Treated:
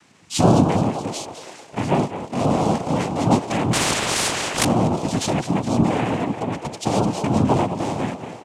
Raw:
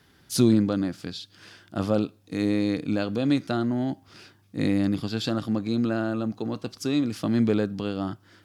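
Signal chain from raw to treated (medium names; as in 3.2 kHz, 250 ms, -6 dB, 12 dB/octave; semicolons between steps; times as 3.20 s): frequency-shifting echo 209 ms, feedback 51%, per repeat +72 Hz, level -11.5 dB; noise-vocoded speech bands 4; 3.73–4.65 s: spectrum-flattening compressor 4:1; trim +5 dB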